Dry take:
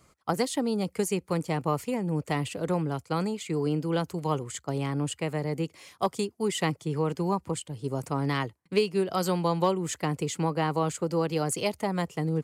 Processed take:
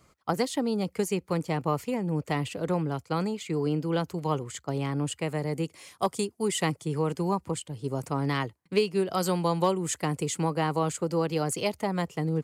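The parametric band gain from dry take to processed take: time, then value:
parametric band 9,300 Hz 0.78 octaves
0:04.81 −4 dB
0:05.50 +5.5 dB
0:07.07 +5.5 dB
0:07.59 −0.5 dB
0:08.86 −0.5 dB
0:09.49 +6 dB
0:10.44 +6 dB
0:11.57 −2 dB

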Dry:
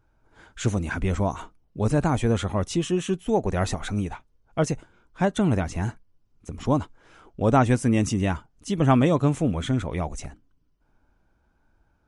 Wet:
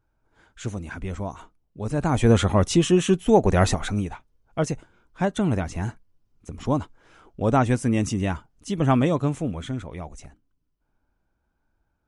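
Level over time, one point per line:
0:01.85 −6.5 dB
0:02.30 +6 dB
0:03.65 +6 dB
0:04.12 −1 dB
0:09.04 −1 dB
0:09.97 −7.5 dB

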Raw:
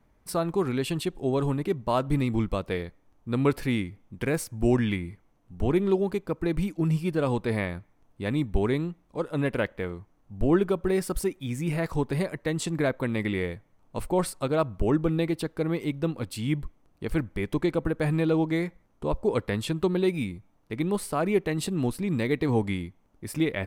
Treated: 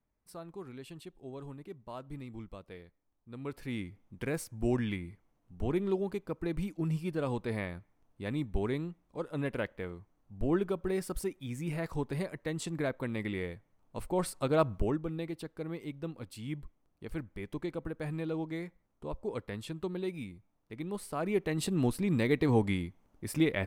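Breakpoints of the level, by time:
0:03.40 −18.5 dB
0:03.87 −7.5 dB
0:14.05 −7.5 dB
0:14.72 −0.5 dB
0:15.00 −11.5 dB
0:20.86 −11.5 dB
0:21.76 −2 dB

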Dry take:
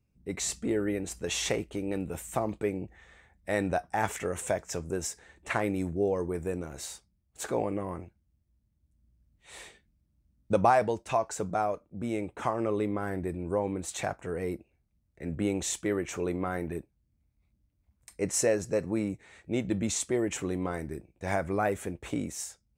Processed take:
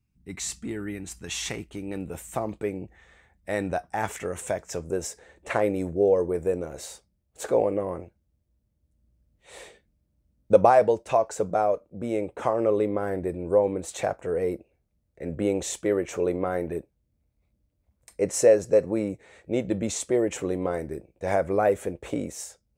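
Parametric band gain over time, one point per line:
parametric band 520 Hz 0.86 octaves
0:01.33 −12.5 dB
0:01.85 −6 dB
0:02.05 +1.5 dB
0:04.55 +1.5 dB
0:05.09 +10.5 dB

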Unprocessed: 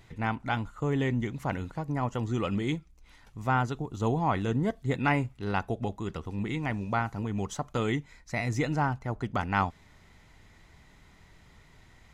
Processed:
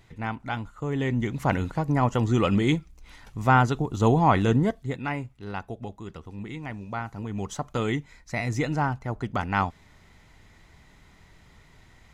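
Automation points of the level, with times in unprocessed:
0:00.87 −1 dB
0:01.48 +7.5 dB
0:04.54 +7.5 dB
0:05.01 −4.5 dB
0:06.90 −4.5 dB
0:07.58 +2 dB

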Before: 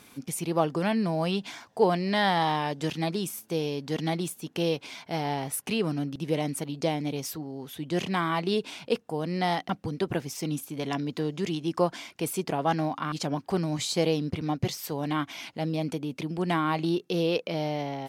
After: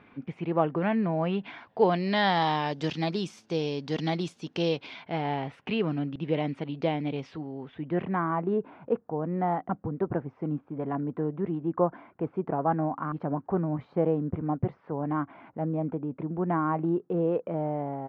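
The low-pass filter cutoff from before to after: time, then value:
low-pass filter 24 dB per octave
0:01.31 2,400 Hz
0:02.40 5,500 Hz
0:04.63 5,500 Hz
0:05.08 3,100 Hz
0:07.43 3,100 Hz
0:08.30 1,400 Hz

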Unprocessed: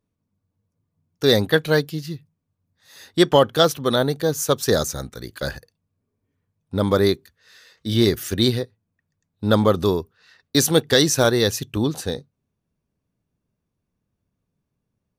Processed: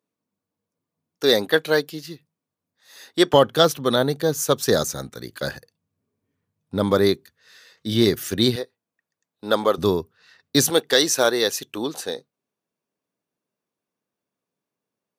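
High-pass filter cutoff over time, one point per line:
290 Hz
from 0:03.34 120 Hz
from 0:08.56 400 Hz
from 0:09.78 100 Hz
from 0:10.70 370 Hz

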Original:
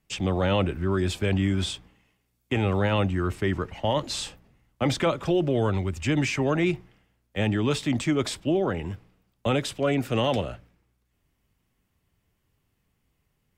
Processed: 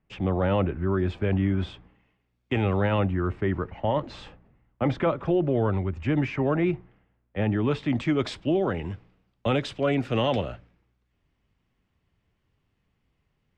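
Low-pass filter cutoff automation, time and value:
0:01.70 1,800 Hz
0:02.54 3,500 Hz
0:03.22 1,800 Hz
0:07.57 1,800 Hz
0:08.32 4,100 Hz

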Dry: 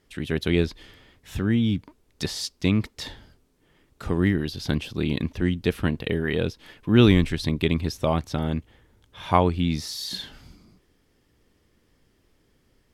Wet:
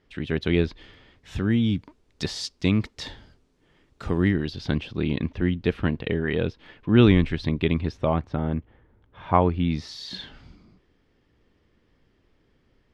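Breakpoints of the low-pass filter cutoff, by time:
0:00.68 3,800 Hz
0:01.49 6,600 Hz
0:04.07 6,600 Hz
0:04.93 3,200 Hz
0:07.80 3,200 Hz
0:08.35 1,700 Hz
0:09.27 1,700 Hz
0:09.90 3,700 Hz

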